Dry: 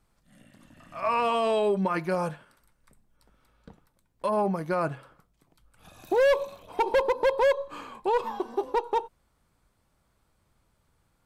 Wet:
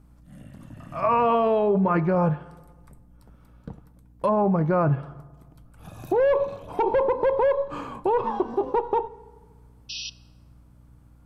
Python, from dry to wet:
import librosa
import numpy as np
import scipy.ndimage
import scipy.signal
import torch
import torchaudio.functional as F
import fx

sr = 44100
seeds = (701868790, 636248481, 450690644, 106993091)

p1 = fx.spec_paint(x, sr, seeds[0], shape='noise', start_s=9.89, length_s=0.21, low_hz=2500.0, high_hz=5900.0, level_db=-34.0)
p2 = fx.graphic_eq(p1, sr, hz=(125, 2000, 4000, 8000), db=(10, -5, -7, -5))
p3 = fx.over_compress(p2, sr, threshold_db=-27.0, ratio=-0.5)
p4 = p2 + (p3 * 10.0 ** (-1.0 / 20.0))
p5 = fx.add_hum(p4, sr, base_hz=60, snr_db=28)
p6 = fx.env_lowpass_down(p5, sr, base_hz=2600.0, full_db=-18.0)
y = fx.rev_fdn(p6, sr, rt60_s=1.5, lf_ratio=0.95, hf_ratio=0.6, size_ms=21.0, drr_db=17.5)